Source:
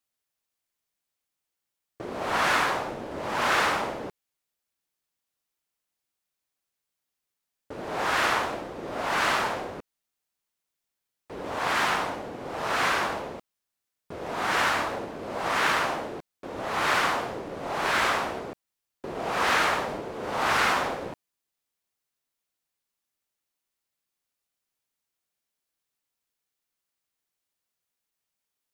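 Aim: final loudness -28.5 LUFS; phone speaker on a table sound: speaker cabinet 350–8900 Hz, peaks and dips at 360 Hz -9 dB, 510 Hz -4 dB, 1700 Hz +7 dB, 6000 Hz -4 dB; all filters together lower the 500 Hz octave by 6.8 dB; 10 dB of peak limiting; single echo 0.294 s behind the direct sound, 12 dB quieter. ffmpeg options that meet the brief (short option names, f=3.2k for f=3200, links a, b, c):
-af "equalizer=f=500:t=o:g=-5,alimiter=limit=-21.5dB:level=0:latency=1,highpass=f=350:w=0.5412,highpass=f=350:w=1.3066,equalizer=f=360:t=q:w=4:g=-9,equalizer=f=510:t=q:w=4:g=-4,equalizer=f=1.7k:t=q:w=4:g=7,equalizer=f=6k:t=q:w=4:g=-4,lowpass=f=8.9k:w=0.5412,lowpass=f=8.9k:w=1.3066,aecho=1:1:294:0.251,volume=1.5dB"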